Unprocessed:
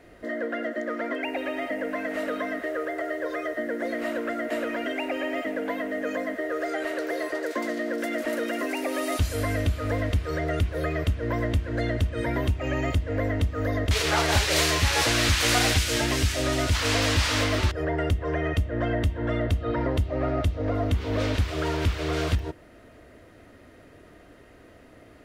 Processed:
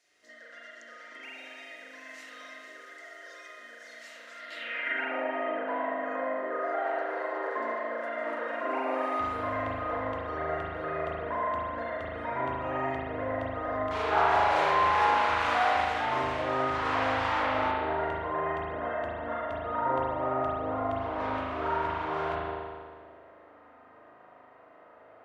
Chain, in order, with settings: spring tank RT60 1.7 s, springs 38 ms, chirp 35 ms, DRR -6.5 dB; band-pass sweep 6000 Hz -> 950 Hz, 4.33–5.25

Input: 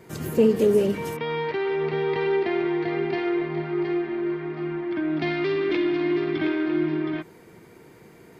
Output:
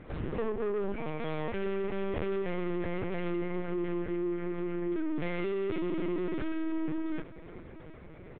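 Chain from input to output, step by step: treble ducked by the level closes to 2200 Hz, closed at -17 dBFS; in parallel at +3 dB: compressor 8:1, threshold -31 dBFS, peak gain reduction 17 dB; on the sum: hard clip -20 dBFS, distortion -10 dB; resonator 100 Hz, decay 0.21 s, harmonics odd, mix 40%; soft clip -22.5 dBFS, distortion -24 dB; air absorption 140 m; feedback echo 0.729 s, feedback 53%, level -20 dB; LPC vocoder at 8 kHz pitch kept; gain -3.5 dB

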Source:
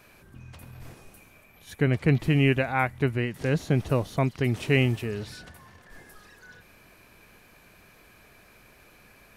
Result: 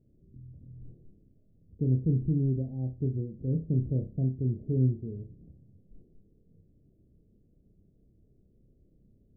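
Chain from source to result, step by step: Wiener smoothing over 25 samples; Gaussian blur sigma 24 samples; flutter echo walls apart 5.3 m, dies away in 0.28 s; gain -2.5 dB

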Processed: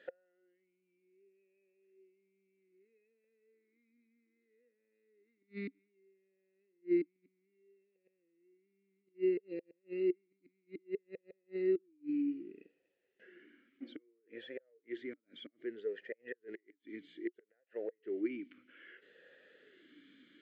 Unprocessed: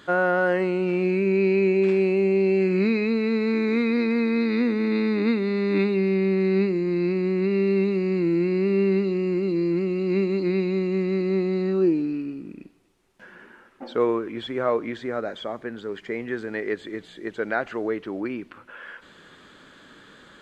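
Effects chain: bell 1300 Hz +3 dB 1.5 oct; flipped gate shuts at -17 dBFS, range -41 dB; vowel sweep e-i 0.62 Hz; gain -2 dB

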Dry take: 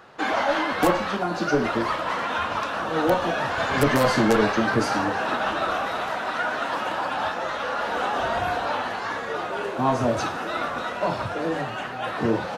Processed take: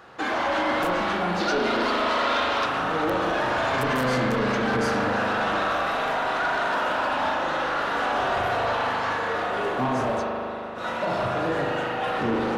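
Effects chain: limiter -16 dBFS, peak gain reduction 9.5 dB; 10.11–10.87 dip -18 dB, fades 0.13 s; spring tank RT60 3 s, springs 39 ms, chirp 40 ms, DRR -1.5 dB; soft clip -18 dBFS, distortion -15 dB; 1.4–2.66 graphic EQ 125/500/4000 Hz -10/+3/+8 dB

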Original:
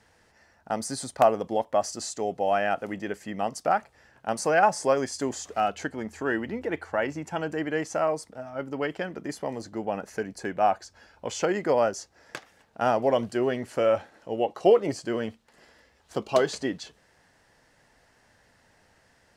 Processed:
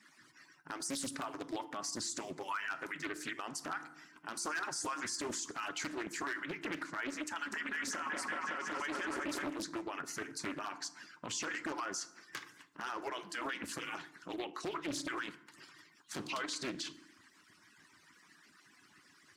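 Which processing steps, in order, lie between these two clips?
median-filter separation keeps percussive; 7.37–9.5 repeats that get brighter 0.187 s, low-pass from 750 Hz, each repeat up 1 oct, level 0 dB; compressor 2:1, threshold -32 dBFS, peak gain reduction 10 dB; band shelf 600 Hz -15.5 dB 1.1 oct; wavefolder -27 dBFS; low shelf 330 Hz -6.5 dB; FDN reverb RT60 0.71 s, low-frequency decay 1.5×, high-frequency decay 0.55×, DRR 13.5 dB; limiter -35.5 dBFS, peak gain reduction 9.5 dB; HPF 93 Hz 24 dB/oct; de-hum 344.3 Hz, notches 35; Doppler distortion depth 0.61 ms; gain +6 dB

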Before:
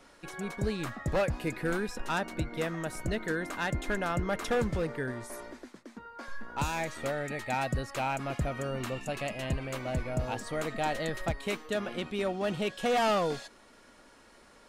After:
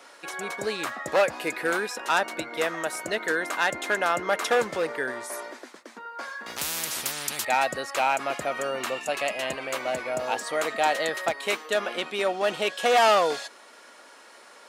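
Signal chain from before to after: HPF 500 Hz 12 dB/oct; 6.46–7.45 spectral compressor 10:1; gain +9 dB

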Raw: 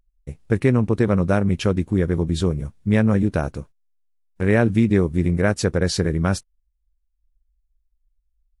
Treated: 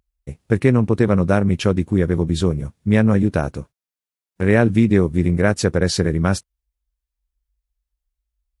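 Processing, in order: HPF 65 Hz; gain +2.5 dB

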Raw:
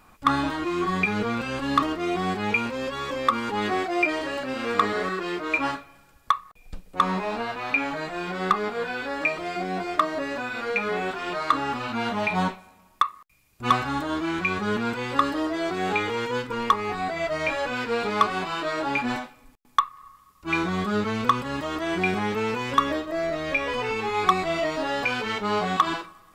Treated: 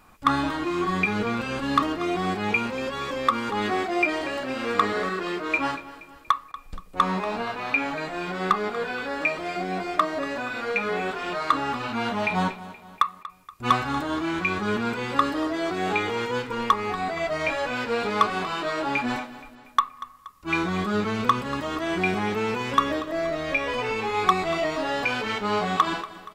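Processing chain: feedback echo 0.237 s, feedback 48%, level -16.5 dB

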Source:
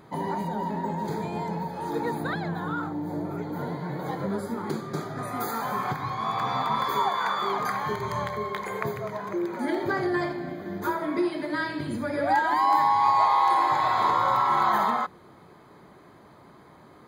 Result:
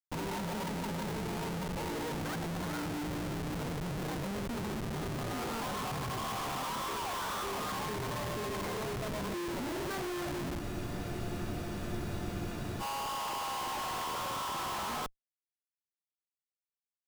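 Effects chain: downsampling 8000 Hz; Schmitt trigger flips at -34 dBFS; spectral freeze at 10.62, 2.18 s; gain -9 dB

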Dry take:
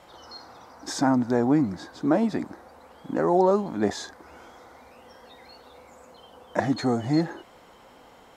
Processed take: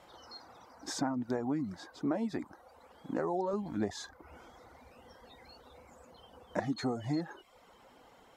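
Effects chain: 3.53–6.6 low shelf 140 Hz +10 dB; compressor 6:1, threshold -22 dBFS, peak gain reduction 7 dB; reverb removal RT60 0.64 s; gain -6 dB

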